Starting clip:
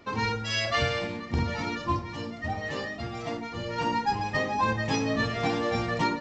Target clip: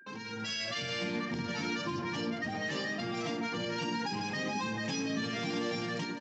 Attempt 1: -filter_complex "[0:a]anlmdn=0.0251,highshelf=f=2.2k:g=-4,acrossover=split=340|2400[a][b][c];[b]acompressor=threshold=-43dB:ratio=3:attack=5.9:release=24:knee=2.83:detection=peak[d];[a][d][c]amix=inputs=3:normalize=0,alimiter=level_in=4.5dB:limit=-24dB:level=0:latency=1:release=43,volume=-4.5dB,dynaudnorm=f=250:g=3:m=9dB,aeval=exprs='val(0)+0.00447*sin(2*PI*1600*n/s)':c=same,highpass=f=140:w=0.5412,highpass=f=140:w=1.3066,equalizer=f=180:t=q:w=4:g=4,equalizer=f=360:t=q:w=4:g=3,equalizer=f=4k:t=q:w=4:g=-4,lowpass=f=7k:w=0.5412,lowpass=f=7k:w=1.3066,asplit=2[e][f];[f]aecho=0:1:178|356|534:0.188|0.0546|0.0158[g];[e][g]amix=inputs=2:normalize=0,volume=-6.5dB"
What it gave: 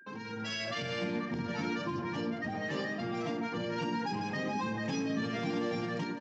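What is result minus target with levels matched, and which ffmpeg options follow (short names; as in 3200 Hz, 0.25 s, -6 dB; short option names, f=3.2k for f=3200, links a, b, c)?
4000 Hz band -4.0 dB
-filter_complex "[0:a]anlmdn=0.0251,highshelf=f=2.2k:g=6,acrossover=split=340|2400[a][b][c];[b]acompressor=threshold=-43dB:ratio=3:attack=5.9:release=24:knee=2.83:detection=peak[d];[a][d][c]amix=inputs=3:normalize=0,alimiter=level_in=4.5dB:limit=-24dB:level=0:latency=1:release=43,volume=-4.5dB,dynaudnorm=f=250:g=3:m=9dB,aeval=exprs='val(0)+0.00447*sin(2*PI*1600*n/s)':c=same,highpass=f=140:w=0.5412,highpass=f=140:w=1.3066,equalizer=f=180:t=q:w=4:g=4,equalizer=f=360:t=q:w=4:g=3,equalizer=f=4k:t=q:w=4:g=-4,lowpass=f=7k:w=0.5412,lowpass=f=7k:w=1.3066,asplit=2[e][f];[f]aecho=0:1:178|356|534:0.188|0.0546|0.0158[g];[e][g]amix=inputs=2:normalize=0,volume=-6.5dB"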